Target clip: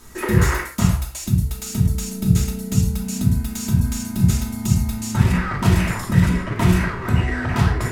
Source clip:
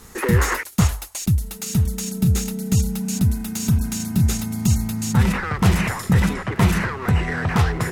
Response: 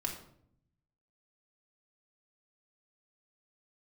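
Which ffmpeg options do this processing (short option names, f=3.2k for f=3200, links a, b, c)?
-filter_complex "[0:a]asettb=1/sr,asplit=3[a][b][c];[a]atrim=end=6.114[d];[b]atrim=start=6.11:end=6.51,asetpts=PTS-STARTPTS,afade=t=in:d=0.004:c=qsin,afade=t=out:st=0.396:d=0.004:c=qsin,asuperstop=centerf=800:order=4:qfactor=6.5[e];[c]atrim=start=6.506[f];[d][e]acrossfade=d=0.004:c1=hsin:c2=qsin[g];[g][f]acrossfade=d=0.004:c1=qsin:c2=hsin,bandreject=f=65.62:t=h:w=4,bandreject=f=131.24:t=h:w=4,bandreject=f=196.86:t=h:w=4,bandreject=f=262.48:t=h:w=4,bandreject=f=328.1:t=h:w=4,bandreject=f=393.72:t=h:w=4,bandreject=f=459.34:t=h:w=4,bandreject=f=524.96:t=h:w=4,bandreject=f=590.58:t=h:w=4,bandreject=f=656.2:t=h:w=4,bandreject=f=721.82:t=h:w=4,bandreject=f=787.44:t=h:w=4,bandreject=f=853.06:t=h:w=4,bandreject=f=918.68:t=h:w=4,bandreject=f=984.3:t=h:w=4,bandreject=f=1.04992k:t=h:w=4,bandreject=f=1.11554k:t=h:w=4,bandreject=f=1.18116k:t=h:w=4,bandreject=f=1.24678k:t=h:w=4,bandreject=f=1.3124k:t=h:w=4,bandreject=f=1.37802k:t=h:w=4,bandreject=f=1.44364k:t=h:w=4,bandreject=f=1.50926k:t=h:w=4,bandreject=f=1.57488k:t=h:w=4,bandreject=f=1.6405k:t=h:w=4,bandreject=f=1.70612k:t=h:w=4,bandreject=f=1.77174k:t=h:w=4,bandreject=f=1.83736k:t=h:w=4,bandreject=f=1.90298k:t=h:w=4,bandreject=f=1.9686k:t=h:w=4[h];[1:a]atrim=start_sample=2205,afade=t=out:st=0.19:d=0.01,atrim=end_sample=8820[i];[h][i]afir=irnorm=-1:irlink=0,volume=-2dB"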